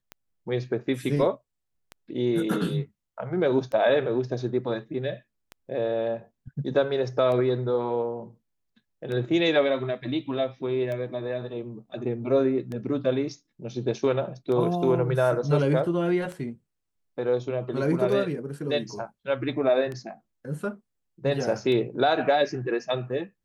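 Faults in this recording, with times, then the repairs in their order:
tick 33 1/3 rpm -22 dBFS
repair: de-click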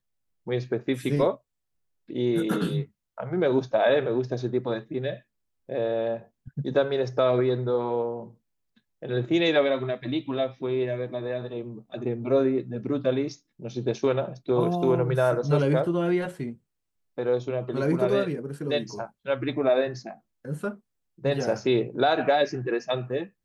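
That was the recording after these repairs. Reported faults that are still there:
nothing left

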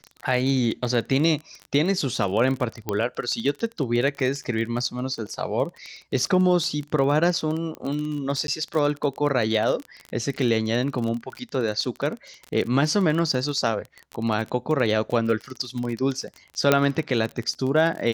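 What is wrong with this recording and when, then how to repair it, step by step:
crackle 29 per s -28 dBFS
2.89 s: pop -11 dBFS
8.47–8.48 s: dropout 12 ms
16.72 s: pop -3 dBFS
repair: de-click; interpolate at 8.47 s, 12 ms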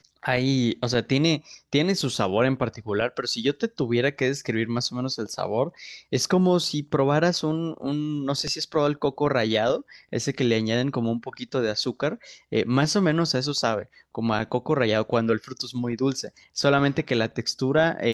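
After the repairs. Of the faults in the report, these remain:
16.72 s: pop

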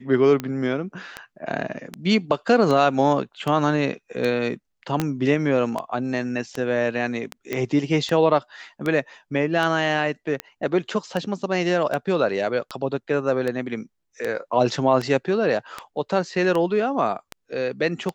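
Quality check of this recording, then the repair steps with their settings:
tick 78 rpm -13 dBFS
5.00 s: pop -8 dBFS
7.53 s: pop -12 dBFS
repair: de-click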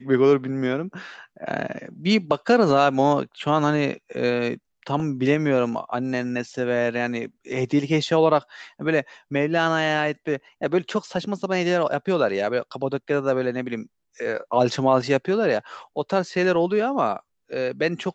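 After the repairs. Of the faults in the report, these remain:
5.00 s: pop

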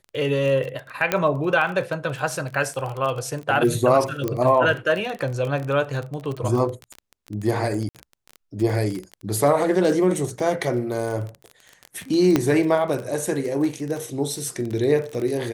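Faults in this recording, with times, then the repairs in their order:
crackle 25 per s -26 dBFS
1.12 s: pop -5 dBFS
4.28 s: pop -11 dBFS
7.89–7.95 s: dropout 57 ms
12.36 s: pop -5 dBFS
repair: de-click; interpolate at 7.89 s, 57 ms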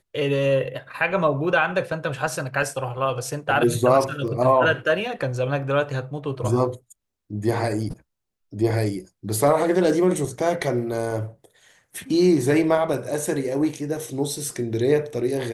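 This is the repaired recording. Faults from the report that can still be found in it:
4.28 s: pop

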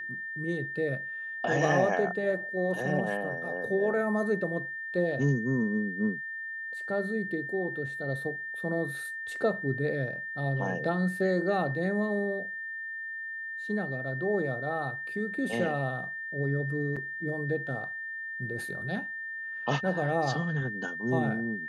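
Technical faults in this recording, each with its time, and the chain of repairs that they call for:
whine 1.8 kHz -35 dBFS
16.96–16.97 s: dropout 5.4 ms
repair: band-stop 1.8 kHz, Q 30; interpolate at 16.96 s, 5.4 ms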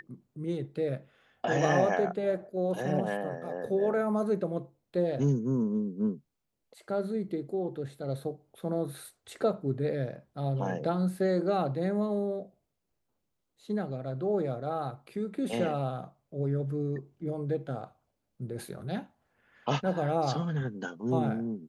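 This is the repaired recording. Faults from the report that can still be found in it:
nothing left

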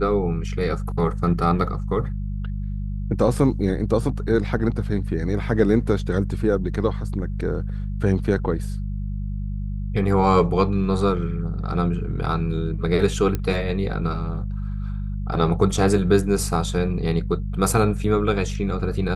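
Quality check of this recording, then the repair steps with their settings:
hum 50 Hz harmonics 4 -27 dBFS
13.35 s: pop -12 dBFS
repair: de-click; de-hum 50 Hz, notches 4

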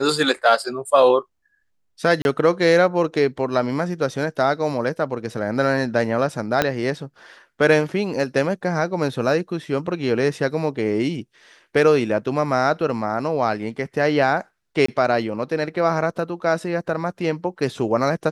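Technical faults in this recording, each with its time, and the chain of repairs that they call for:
2.22–2.25 s: dropout 31 ms
6.62 s: pop -3 dBFS
14.86–14.88 s: dropout 24 ms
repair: de-click; interpolate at 2.22 s, 31 ms; interpolate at 14.86 s, 24 ms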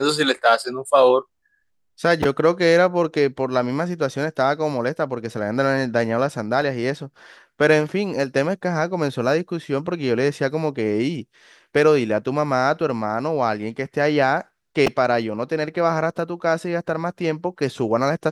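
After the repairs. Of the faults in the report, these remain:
6.62 s: pop

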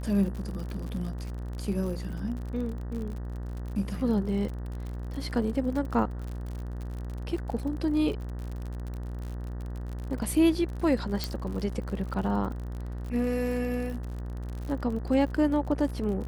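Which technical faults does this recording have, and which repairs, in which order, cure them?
buzz 60 Hz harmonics 32 -35 dBFS
crackle 51 per s -35 dBFS
11.24 s: pop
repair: de-click; de-hum 60 Hz, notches 32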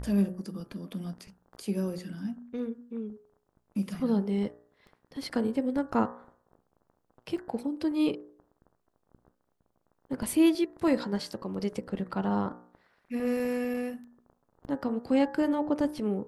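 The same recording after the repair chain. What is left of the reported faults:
11.24 s: pop

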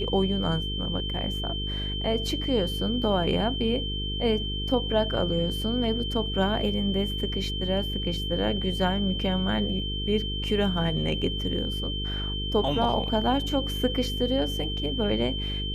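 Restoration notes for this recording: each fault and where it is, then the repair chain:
buzz 50 Hz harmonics 9 -32 dBFS
whine 3.1 kHz -32 dBFS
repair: de-hum 50 Hz, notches 9; band-stop 3.1 kHz, Q 30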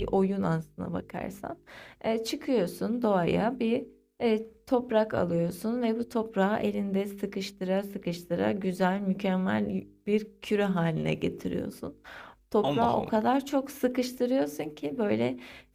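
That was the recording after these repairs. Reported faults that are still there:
nothing left

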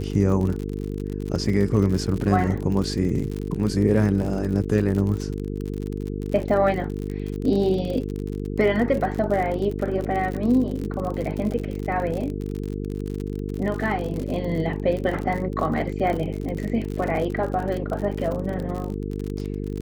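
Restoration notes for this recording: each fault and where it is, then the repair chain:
buzz 50 Hz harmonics 9 -29 dBFS
crackle 55 per s -28 dBFS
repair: de-click; de-hum 50 Hz, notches 9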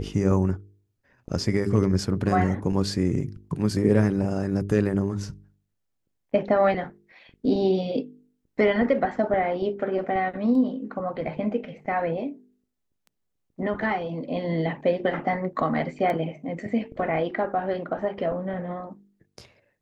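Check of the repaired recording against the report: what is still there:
nothing left

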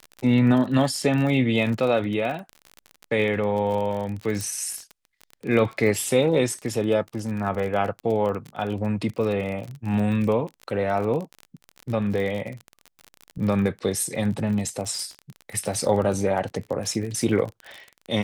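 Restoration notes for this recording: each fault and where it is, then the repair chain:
crackle 37 per s -29 dBFS
4.41 s: pop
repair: de-click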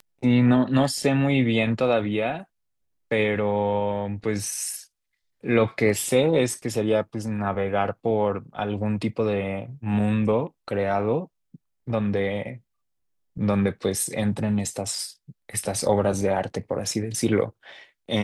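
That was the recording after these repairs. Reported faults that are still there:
nothing left

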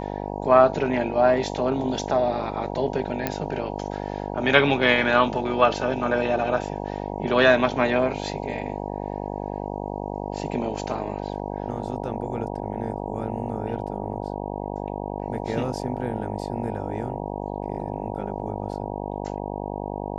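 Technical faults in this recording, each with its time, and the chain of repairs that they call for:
buzz 50 Hz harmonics 19 -31 dBFS
3.27 s: pop -10 dBFS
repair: de-click; de-hum 50 Hz, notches 19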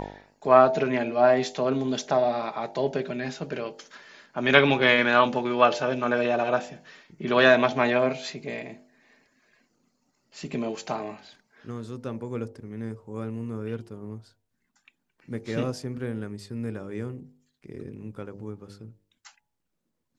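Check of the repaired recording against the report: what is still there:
nothing left

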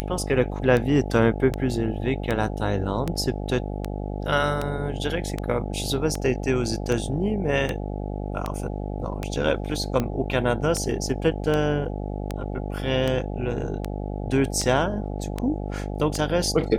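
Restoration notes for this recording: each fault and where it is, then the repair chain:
buzz 50 Hz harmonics 17 -30 dBFS
tick 78 rpm -12 dBFS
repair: de-click; de-hum 50 Hz, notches 17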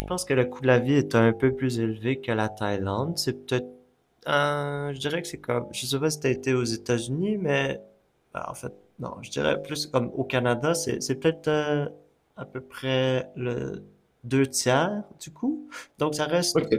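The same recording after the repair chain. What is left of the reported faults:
nothing left

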